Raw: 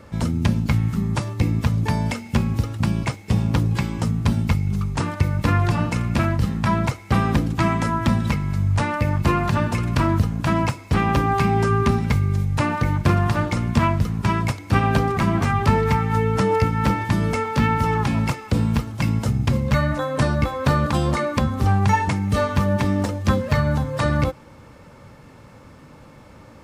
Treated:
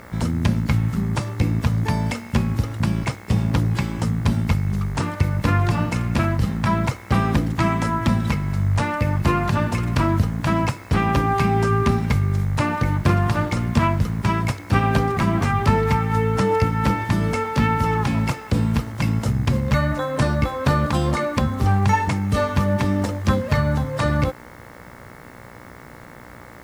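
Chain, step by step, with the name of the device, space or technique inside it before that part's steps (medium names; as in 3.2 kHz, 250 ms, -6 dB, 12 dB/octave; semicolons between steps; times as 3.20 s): video cassette with head-switching buzz (mains buzz 60 Hz, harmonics 37, -44 dBFS -1 dB/octave; white noise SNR 37 dB)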